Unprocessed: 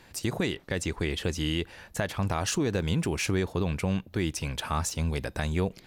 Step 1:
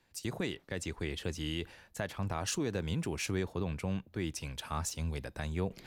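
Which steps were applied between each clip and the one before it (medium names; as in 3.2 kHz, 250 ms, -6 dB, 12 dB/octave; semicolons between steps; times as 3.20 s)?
reverse; upward compressor, threshold -34 dBFS; reverse; three bands expanded up and down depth 40%; trim -7 dB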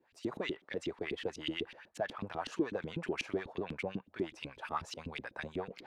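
saturation -27.5 dBFS, distortion -16 dB; LFO band-pass saw up 8.1 Hz 250–3700 Hz; trim +9 dB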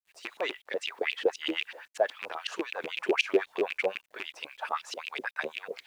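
rattle on loud lows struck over -38 dBFS, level -29 dBFS; LFO high-pass sine 3.8 Hz 400–3100 Hz; bit crusher 12-bit; trim +5.5 dB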